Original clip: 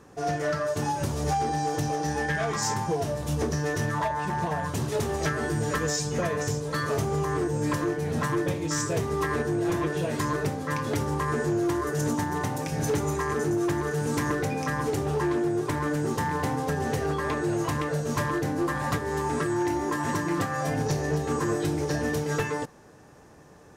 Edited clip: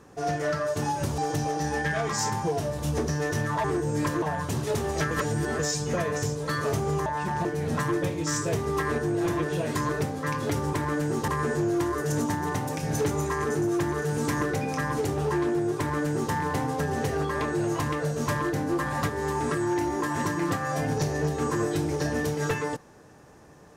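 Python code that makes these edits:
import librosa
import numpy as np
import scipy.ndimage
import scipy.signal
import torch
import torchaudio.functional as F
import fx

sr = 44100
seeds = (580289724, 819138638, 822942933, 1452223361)

y = fx.edit(x, sr, fx.cut(start_s=1.18, length_s=0.44),
    fx.swap(start_s=4.08, length_s=0.39, other_s=7.31, other_length_s=0.58),
    fx.reverse_span(start_s=5.36, length_s=0.48),
    fx.duplicate(start_s=15.67, length_s=0.55, to_s=11.17), tone=tone)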